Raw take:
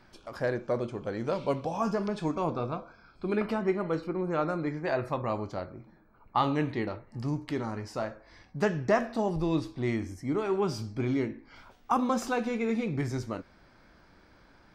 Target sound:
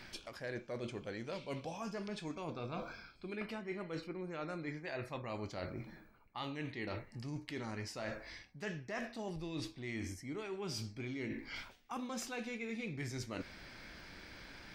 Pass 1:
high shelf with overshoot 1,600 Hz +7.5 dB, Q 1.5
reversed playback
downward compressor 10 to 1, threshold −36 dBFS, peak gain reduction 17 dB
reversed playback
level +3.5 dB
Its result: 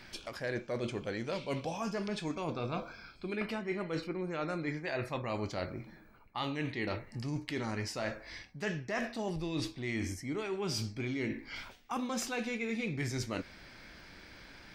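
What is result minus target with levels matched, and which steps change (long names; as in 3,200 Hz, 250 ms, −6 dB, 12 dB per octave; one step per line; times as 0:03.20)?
downward compressor: peak gain reduction −6.5 dB
change: downward compressor 10 to 1, threshold −43 dBFS, peak gain reduction 23.5 dB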